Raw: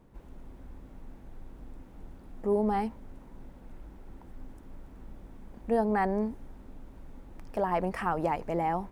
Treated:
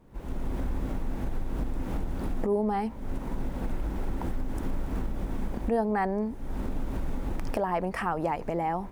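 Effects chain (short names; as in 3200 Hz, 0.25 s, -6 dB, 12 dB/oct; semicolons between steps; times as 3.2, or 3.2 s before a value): recorder AGC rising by 51 dB/s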